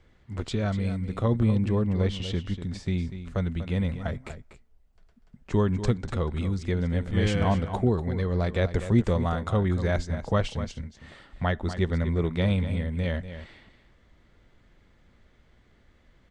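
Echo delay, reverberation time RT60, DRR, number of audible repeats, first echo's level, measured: 243 ms, no reverb, no reverb, 1, -11.5 dB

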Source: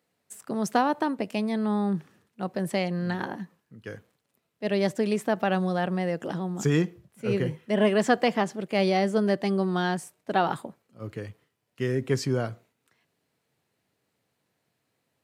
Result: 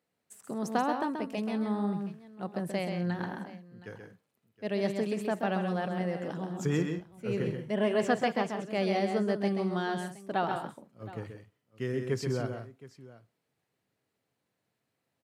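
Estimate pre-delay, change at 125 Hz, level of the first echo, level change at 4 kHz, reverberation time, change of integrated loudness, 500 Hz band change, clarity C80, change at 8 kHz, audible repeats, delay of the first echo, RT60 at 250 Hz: no reverb, -5.0 dB, -6.0 dB, -6.5 dB, no reverb, -5.0 dB, -4.5 dB, no reverb, -7.0 dB, 3, 131 ms, no reverb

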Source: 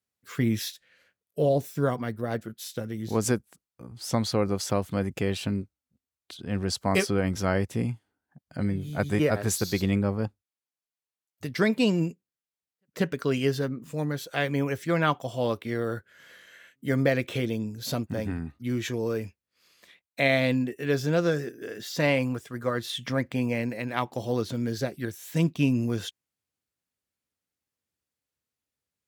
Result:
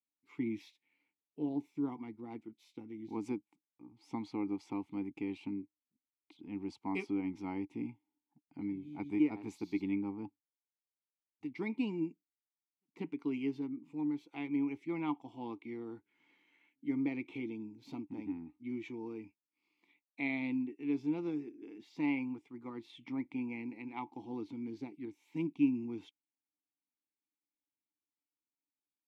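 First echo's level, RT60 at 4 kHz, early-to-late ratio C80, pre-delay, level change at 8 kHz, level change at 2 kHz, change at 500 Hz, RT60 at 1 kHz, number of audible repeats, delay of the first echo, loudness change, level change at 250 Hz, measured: no echo, no reverb, no reverb, no reverb, under -30 dB, -15.5 dB, -18.0 dB, no reverb, no echo, no echo, -11.0 dB, -7.0 dB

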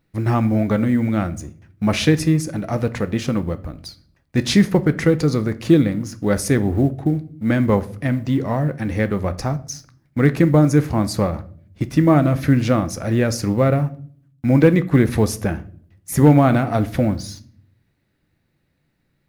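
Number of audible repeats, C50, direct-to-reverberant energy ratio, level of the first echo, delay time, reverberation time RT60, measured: no echo, 18.0 dB, 11.5 dB, no echo, no echo, 0.50 s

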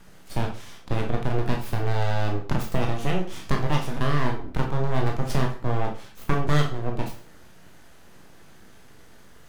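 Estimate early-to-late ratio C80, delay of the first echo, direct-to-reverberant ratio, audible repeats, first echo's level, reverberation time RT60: 13.0 dB, no echo, 1.0 dB, no echo, no echo, 0.45 s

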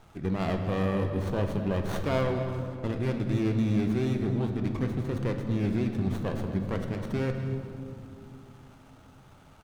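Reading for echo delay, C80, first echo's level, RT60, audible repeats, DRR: 242 ms, 6.5 dB, -14.5 dB, 2.8 s, 2, 4.5 dB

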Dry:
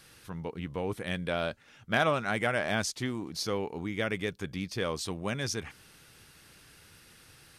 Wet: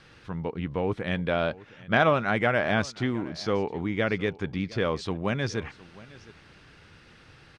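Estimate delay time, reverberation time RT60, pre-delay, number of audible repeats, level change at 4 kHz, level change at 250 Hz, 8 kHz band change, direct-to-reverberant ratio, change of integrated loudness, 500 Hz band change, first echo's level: 713 ms, no reverb, no reverb, 1, 0.0 dB, +6.0 dB, -7.5 dB, no reverb, +4.5 dB, +5.5 dB, -20.5 dB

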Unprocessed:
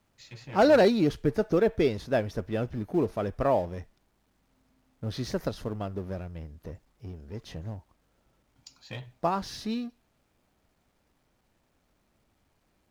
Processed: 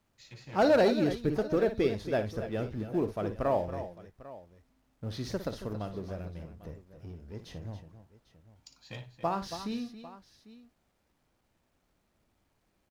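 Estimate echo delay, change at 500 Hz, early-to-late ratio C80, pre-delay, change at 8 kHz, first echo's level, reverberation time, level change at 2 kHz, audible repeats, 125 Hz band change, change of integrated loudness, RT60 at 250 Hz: 57 ms, -3.5 dB, no reverb, no reverb, -3.5 dB, -11.0 dB, no reverb, -3.5 dB, 3, -3.5 dB, -3.5 dB, no reverb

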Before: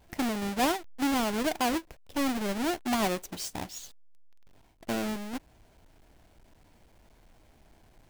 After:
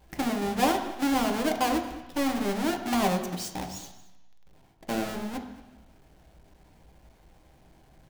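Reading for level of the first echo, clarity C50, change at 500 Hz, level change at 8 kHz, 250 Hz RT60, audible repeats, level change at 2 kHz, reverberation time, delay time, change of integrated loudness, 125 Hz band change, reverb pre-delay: -19.5 dB, 7.5 dB, +2.5 dB, +0.5 dB, 1.0 s, 1, +1.0 dB, 1.0 s, 226 ms, +2.0 dB, +4.0 dB, 3 ms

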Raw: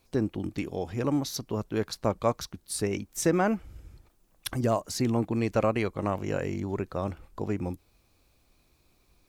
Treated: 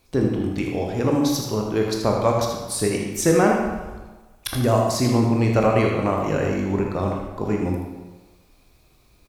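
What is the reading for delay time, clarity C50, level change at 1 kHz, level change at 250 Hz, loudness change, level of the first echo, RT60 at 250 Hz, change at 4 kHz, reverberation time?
79 ms, 2.0 dB, +8.5 dB, +8.0 dB, +8.0 dB, -7.5 dB, 1.2 s, +7.5 dB, 1.3 s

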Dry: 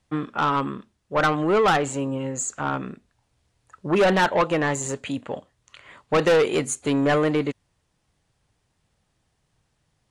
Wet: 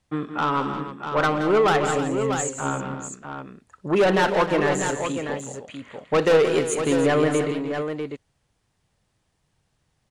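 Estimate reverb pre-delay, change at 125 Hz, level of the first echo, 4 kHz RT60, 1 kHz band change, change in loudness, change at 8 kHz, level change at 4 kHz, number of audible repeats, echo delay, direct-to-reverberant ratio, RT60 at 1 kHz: no reverb, 0.0 dB, -19.5 dB, no reverb, 0.0 dB, +0.5 dB, 0.0 dB, 0.0 dB, 5, 60 ms, no reverb, no reverb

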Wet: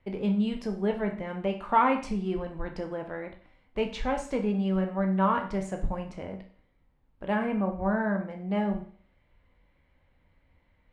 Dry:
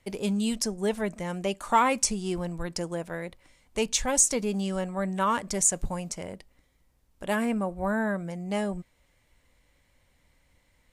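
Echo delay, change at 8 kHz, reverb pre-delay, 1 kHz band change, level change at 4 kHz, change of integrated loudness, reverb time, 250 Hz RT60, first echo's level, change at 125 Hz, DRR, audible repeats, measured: no echo, -27.5 dB, 16 ms, 0.0 dB, -9.5 dB, -1.5 dB, 0.45 s, 0.45 s, no echo, +1.5 dB, 4.0 dB, no echo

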